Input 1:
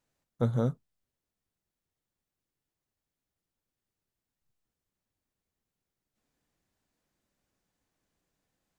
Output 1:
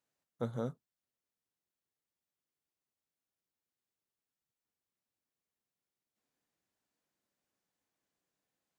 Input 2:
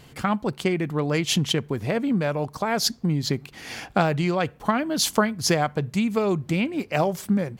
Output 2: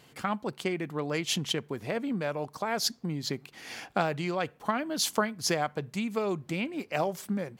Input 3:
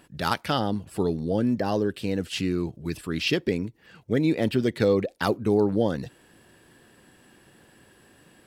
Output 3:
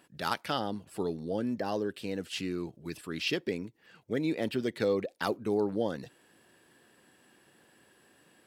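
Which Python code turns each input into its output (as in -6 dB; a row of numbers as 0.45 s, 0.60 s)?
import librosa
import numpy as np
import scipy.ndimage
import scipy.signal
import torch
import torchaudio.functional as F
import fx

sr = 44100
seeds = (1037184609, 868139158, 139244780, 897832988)

y = fx.highpass(x, sr, hz=250.0, slope=6)
y = F.gain(torch.from_numpy(y), -5.5).numpy()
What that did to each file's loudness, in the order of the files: -9.5 LU, -7.0 LU, -7.5 LU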